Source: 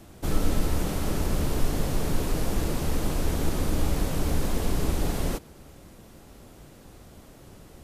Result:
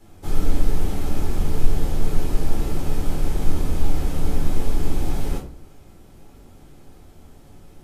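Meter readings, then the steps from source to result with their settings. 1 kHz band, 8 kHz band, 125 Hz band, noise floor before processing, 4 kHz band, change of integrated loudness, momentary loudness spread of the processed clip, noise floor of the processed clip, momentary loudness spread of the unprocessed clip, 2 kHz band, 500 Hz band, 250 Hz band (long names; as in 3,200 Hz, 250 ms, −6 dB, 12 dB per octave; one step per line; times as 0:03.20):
−0.5 dB, −3.5 dB, +2.5 dB, −50 dBFS, −2.5 dB, +1.5 dB, 3 LU, −47 dBFS, 1 LU, −2.5 dB, −0.5 dB, +0.5 dB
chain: rectangular room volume 290 cubic metres, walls furnished, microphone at 4 metres
level −9 dB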